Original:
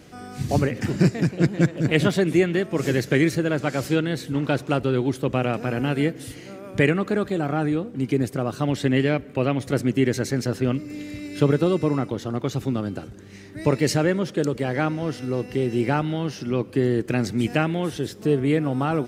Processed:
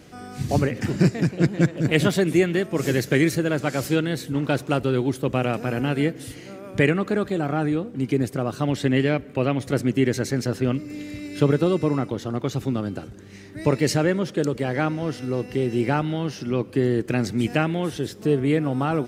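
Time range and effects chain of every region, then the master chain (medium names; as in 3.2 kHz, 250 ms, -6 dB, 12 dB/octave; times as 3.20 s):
1.84–5.80 s: treble shelf 8 kHz +7.5 dB + tape noise reduction on one side only decoder only
whole clip: none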